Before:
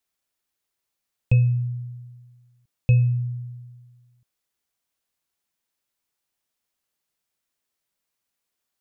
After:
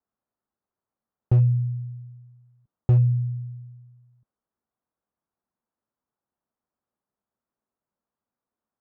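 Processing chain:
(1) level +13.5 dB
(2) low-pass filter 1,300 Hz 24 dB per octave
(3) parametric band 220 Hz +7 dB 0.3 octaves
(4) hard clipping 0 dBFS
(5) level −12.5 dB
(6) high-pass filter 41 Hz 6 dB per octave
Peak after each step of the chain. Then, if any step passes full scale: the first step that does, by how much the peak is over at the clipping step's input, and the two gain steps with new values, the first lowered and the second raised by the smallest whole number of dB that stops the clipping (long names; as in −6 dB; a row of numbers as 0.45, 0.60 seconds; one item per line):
+4.5, +4.0, +4.5, 0.0, −12.5, −10.5 dBFS
step 1, 4.5 dB
step 1 +8.5 dB, step 5 −7.5 dB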